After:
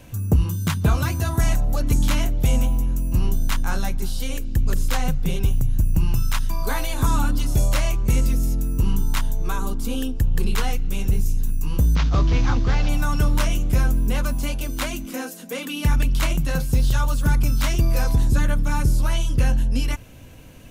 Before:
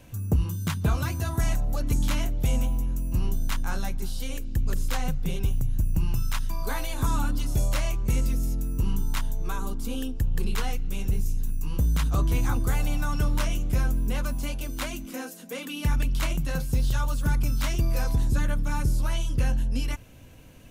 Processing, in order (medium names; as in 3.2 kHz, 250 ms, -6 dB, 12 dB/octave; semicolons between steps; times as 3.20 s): 11.95–12.89 s: CVSD coder 32 kbps; trim +5.5 dB